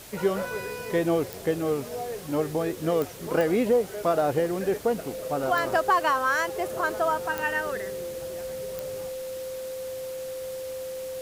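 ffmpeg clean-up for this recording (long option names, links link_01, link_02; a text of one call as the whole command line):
ffmpeg -i in.wav -af "adeclick=threshold=4,bandreject=frequency=520:width=30,afwtdn=0.0056" out.wav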